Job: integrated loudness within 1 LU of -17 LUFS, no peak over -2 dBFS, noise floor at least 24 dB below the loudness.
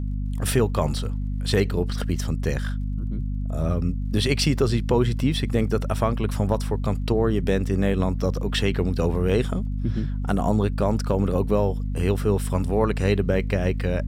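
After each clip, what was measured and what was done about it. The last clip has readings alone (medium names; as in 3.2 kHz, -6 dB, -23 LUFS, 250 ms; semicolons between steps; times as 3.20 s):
tick rate 28 per s; hum 50 Hz; highest harmonic 250 Hz; hum level -24 dBFS; loudness -24.0 LUFS; peak level -7.5 dBFS; loudness target -17.0 LUFS
-> de-click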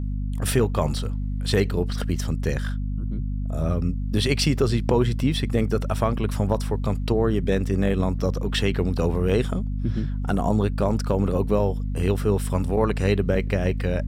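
tick rate 1.5 per s; hum 50 Hz; highest harmonic 250 Hz; hum level -24 dBFS
-> de-hum 50 Hz, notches 5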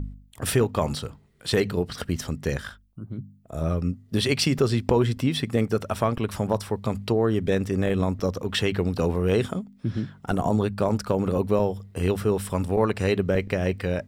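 hum not found; loudness -25.5 LUFS; peak level -5.5 dBFS; loudness target -17.0 LUFS
-> trim +8.5 dB; peak limiter -2 dBFS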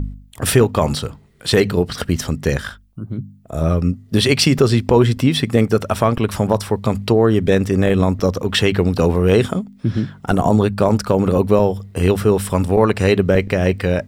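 loudness -17.0 LUFS; peak level -2.0 dBFS; noise floor -47 dBFS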